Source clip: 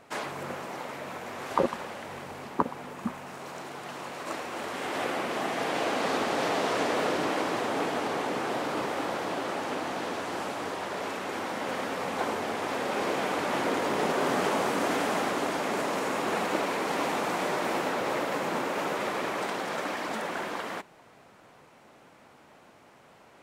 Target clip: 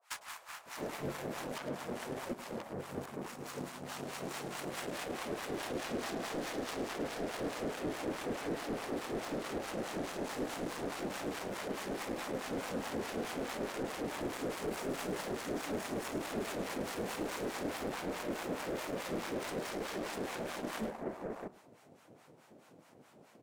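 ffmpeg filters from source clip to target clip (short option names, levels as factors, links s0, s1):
-filter_complex "[0:a]highpass=110,equalizer=f=2200:w=0.48:g=-8,acompressor=threshold=0.0178:ratio=3,asoftclip=type=hard:threshold=0.0119,acrossover=split=960[s0][s1];[s0]adelay=660[s2];[s2][s1]amix=inputs=2:normalize=0,asoftclip=type=tanh:threshold=0.0106,acrossover=split=720[s3][s4];[s3]aeval=exprs='val(0)*(1-1/2+1/2*cos(2*PI*4.7*n/s))':c=same[s5];[s4]aeval=exprs='val(0)*(1-1/2-1/2*cos(2*PI*4.7*n/s))':c=same[s6];[s5][s6]amix=inputs=2:normalize=0,asplit=2[s7][s8];[s8]aecho=0:1:106:0.2[s9];[s7][s9]amix=inputs=2:normalize=0,aeval=exprs='0.0141*(cos(1*acos(clip(val(0)/0.0141,-1,1)))-cos(1*PI/2))+0.00126*(cos(7*acos(clip(val(0)/0.0141,-1,1)))-cos(7*PI/2))':c=same,volume=3.76"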